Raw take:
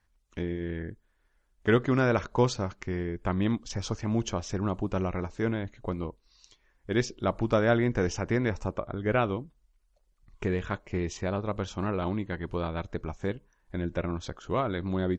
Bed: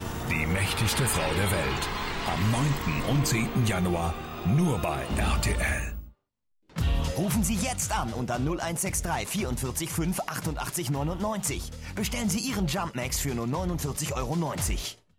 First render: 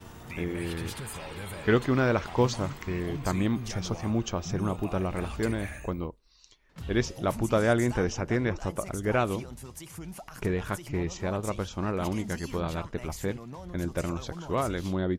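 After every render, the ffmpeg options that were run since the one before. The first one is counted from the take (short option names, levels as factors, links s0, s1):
-filter_complex "[1:a]volume=0.224[s0];[0:a][s0]amix=inputs=2:normalize=0"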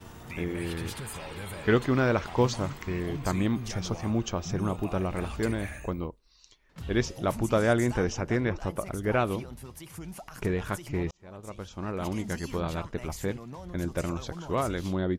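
-filter_complex "[0:a]asettb=1/sr,asplit=3[s0][s1][s2];[s0]atrim=end=8.404[s3];[s1]atrim=start=8.4:end=9.94,asetpts=PTS-STARTPTS,afade=t=in:d=0.004:c=qsin,afade=t=out:st=1.536:d=0.004:c=qsin,equalizer=f=7100:t=o:w=0.71:g=-7[s4];[s2]atrim=start=9.936[s5];[s3][s4]acrossfade=d=0.004:c1=hsin:c2=qsin[s6];[s6][s5]acrossfade=d=0.004:c1=qsin:c2=hsin,asplit=2[s7][s8];[s7]atrim=end=11.11,asetpts=PTS-STARTPTS,afade=t=out:st=11.106:d=0.004:c=hsin[s9];[s8]atrim=start=11.11,asetpts=PTS-STARTPTS,afade=t=in:d=1.2[s10];[s9][s10]concat=n=2:v=0:a=1"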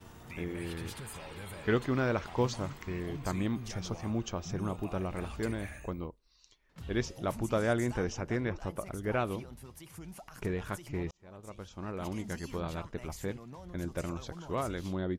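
-af "volume=0.531"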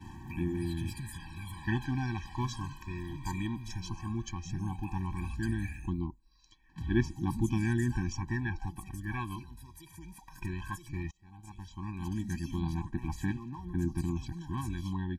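-af "aphaser=in_gain=1:out_gain=1:delay=2.1:decay=0.54:speed=0.15:type=sinusoidal,afftfilt=real='re*eq(mod(floor(b*sr/1024/380),2),0)':imag='im*eq(mod(floor(b*sr/1024/380),2),0)':win_size=1024:overlap=0.75"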